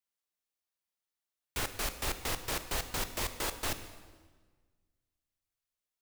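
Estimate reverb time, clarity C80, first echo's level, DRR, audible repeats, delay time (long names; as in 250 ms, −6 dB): 1.5 s, 12.5 dB, no echo audible, 9.5 dB, no echo audible, no echo audible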